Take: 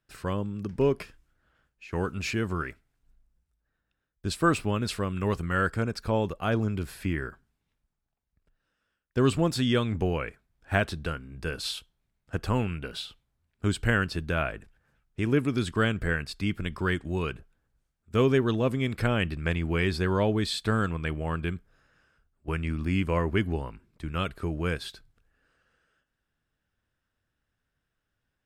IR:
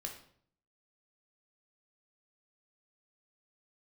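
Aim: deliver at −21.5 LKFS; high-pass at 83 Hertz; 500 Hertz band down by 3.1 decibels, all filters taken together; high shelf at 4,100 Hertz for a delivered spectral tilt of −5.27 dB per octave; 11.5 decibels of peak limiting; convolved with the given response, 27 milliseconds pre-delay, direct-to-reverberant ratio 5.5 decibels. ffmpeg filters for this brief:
-filter_complex "[0:a]highpass=83,equalizer=frequency=500:width_type=o:gain=-4,highshelf=frequency=4100:gain=4,alimiter=limit=-18.5dB:level=0:latency=1,asplit=2[link_01][link_02];[1:a]atrim=start_sample=2205,adelay=27[link_03];[link_02][link_03]afir=irnorm=-1:irlink=0,volume=-4dB[link_04];[link_01][link_04]amix=inputs=2:normalize=0,volume=9.5dB"

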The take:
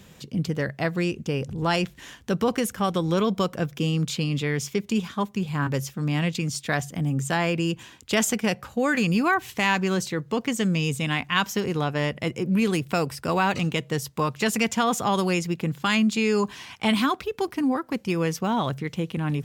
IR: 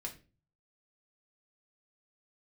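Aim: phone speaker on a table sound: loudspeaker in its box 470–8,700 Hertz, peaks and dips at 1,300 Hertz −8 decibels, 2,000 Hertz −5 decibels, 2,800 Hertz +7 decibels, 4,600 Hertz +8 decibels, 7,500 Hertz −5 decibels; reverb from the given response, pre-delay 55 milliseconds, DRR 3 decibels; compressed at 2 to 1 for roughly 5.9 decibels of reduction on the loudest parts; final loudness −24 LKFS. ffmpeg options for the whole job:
-filter_complex "[0:a]acompressor=threshold=-29dB:ratio=2,asplit=2[link_01][link_02];[1:a]atrim=start_sample=2205,adelay=55[link_03];[link_02][link_03]afir=irnorm=-1:irlink=0,volume=-1.5dB[link_04];[link_01][link_04]amix=inputs=2:normalize=0,highpass=frequency=470:width=0.5412,highpass=frequency=470:width=1.3066,equalizer=frequency=1300:width_type=q:width=4:gain=-8,equalizer=frequency=2000:width_type=q:width=4:gain=-5,equalizer=frequency=2800:width_type=q:width=4:gain=7,equalizer=frequency=4600:width_type=q:width=4:gain=8,equalizer=frequency=7500:width_type=q:width=4:gain=-5,lowpass=frequency=8700:width=0.5412,lowpass=frequency=8700:width=1.3066,volume=7.5dB"

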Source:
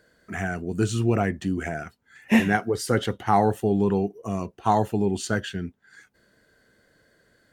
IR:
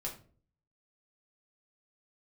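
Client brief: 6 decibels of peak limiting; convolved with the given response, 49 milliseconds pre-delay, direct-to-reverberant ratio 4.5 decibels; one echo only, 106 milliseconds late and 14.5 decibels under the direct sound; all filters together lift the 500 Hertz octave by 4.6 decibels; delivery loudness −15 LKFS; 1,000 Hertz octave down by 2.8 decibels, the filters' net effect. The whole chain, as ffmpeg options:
-filter_complex "[0:a]equalizer=frequency=500:width_type=o:gain=8,equalizer=frequency=1000:width_type=o:gain=-9,alimiter=limit=-12dB:level=0:latency=1,aecho=1:1:106:0.188,asplit=2[link_01][link_02];[1:a]atrim=start_sample=2205,adelay=49[link_03];[link_02][link_03]afir=irnorm=-1:irlink=0,volume=-4.5dB[link_04];[link_01][link_04]amix=inputs=2:normalize=0,volume=8dB"

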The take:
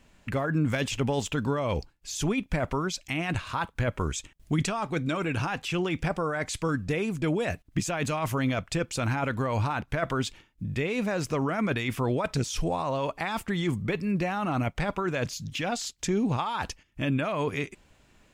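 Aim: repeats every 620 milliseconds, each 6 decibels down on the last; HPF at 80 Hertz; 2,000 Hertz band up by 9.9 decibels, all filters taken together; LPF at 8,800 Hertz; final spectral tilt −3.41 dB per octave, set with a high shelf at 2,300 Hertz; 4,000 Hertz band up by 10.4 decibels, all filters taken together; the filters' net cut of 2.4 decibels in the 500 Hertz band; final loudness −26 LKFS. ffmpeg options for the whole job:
ffmpeg -i in.wav -af "highpass=80,lowpass=8800,equalizer=frequency=500:width_type=o:gain=-4,equalizer=frequency=2000:width_type=o:gain=8.5,highshelf=frequency=2300:gain=5.5,equalizer=frequency=4000:width_type=o:gain=5.5,aecho=1:1:620|1240|1860|2480|3100|3720:0.501|0.251|0.125|0.0626|0.0313|0.0157,volume=-2dB" out.wav

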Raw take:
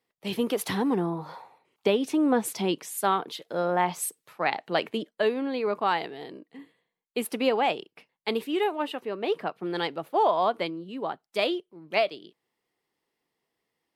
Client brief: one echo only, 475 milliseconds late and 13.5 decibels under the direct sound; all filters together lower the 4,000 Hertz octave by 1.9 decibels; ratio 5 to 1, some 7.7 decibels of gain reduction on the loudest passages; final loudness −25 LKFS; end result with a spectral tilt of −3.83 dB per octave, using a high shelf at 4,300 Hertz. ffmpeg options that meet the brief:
ffmpeg -i in.wav -af "equalizer=frequency=4000:width_type=o:gain=-5,highshelf=frequency=4300:gain=4.5,acompressor=threshold=-27dB:ratio=5,aecho=1:1:475:0.211,volume=8dB" out.wav

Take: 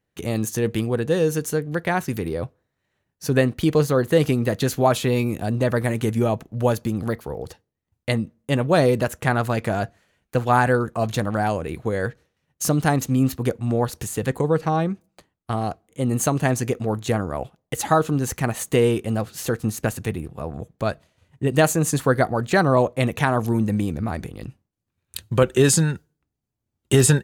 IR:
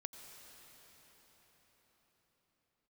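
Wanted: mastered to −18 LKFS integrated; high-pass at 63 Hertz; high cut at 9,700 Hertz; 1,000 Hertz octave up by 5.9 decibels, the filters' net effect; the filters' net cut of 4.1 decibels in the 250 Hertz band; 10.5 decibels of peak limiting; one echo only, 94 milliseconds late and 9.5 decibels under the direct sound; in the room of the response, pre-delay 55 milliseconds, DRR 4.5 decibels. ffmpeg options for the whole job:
-filter_complex "[0:a]highpass=63,lowpass=9700,equalizer=frequency=250:width_type=o:gain=-6,equalizer=frequency=1000:width_type=o:gain=8.5,alimiter=limit=-10.5dB:level=0:latency=1,aecho=1:1:94:0.335,asplit=2[link_01][link_02];[1:a]atrim=start_sample=2205,adelay=55[link_03];[link_02][link_03]afir=irnorm=-1:irlink=0,volume=-1dB[link_04];[link_01][link_04]amix=inputs=2:normalize=0,volume=4.5dB"

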